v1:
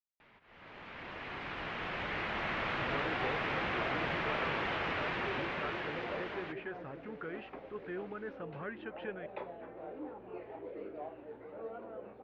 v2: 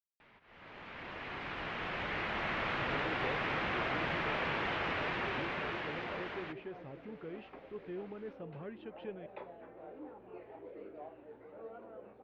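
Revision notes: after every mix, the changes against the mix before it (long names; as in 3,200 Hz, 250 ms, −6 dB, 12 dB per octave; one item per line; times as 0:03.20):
speech: add parametric band 1,500 Hz −14.5 dB 1.2 octaves
second sound −4.5 dB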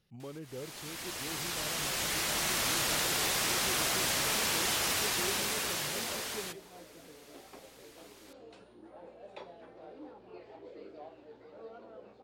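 speech: entry −2.70 s
master: remove low-pass filter 2,500 Hz 24 dB per octave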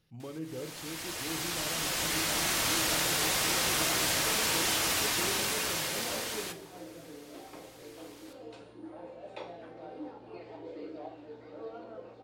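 reverb: on, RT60 0.55 s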